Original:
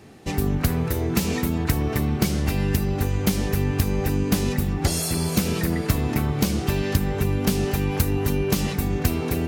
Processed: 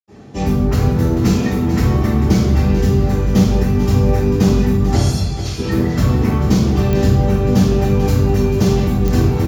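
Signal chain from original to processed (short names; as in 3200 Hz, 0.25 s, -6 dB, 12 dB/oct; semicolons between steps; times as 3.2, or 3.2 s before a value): reverb removal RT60 0.82 s; 5.06–5.5 band-pass 4100 Hz, Q 1; echo 0.442 s -11 dB; reverb RT60 1.0 s, pre-delay 76 ms; pops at 6.93/9.08, -5 dBFS; gain -2.5 dB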